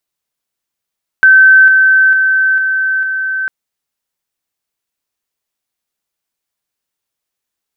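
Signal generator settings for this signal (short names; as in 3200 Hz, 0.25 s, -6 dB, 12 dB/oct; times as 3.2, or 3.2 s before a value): level ladder 1540 Hz -2 dBFS, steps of -3 dB, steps 5, 0.45 s 0.00 s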